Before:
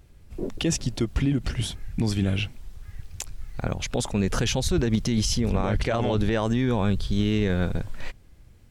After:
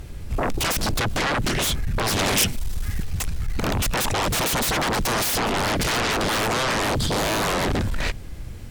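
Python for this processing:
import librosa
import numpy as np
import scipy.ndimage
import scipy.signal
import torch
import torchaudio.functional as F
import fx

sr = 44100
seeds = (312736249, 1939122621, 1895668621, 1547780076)

y = fx.fold_sine(x, sr, drive_db=19, ceiling_db=-13.5)
y = fx.high_shelf(y, sr, hz=4000.0, db=8.5, at=(2.19, 3.03))
y = y * 10.0 ** (-6.0 / 20.0)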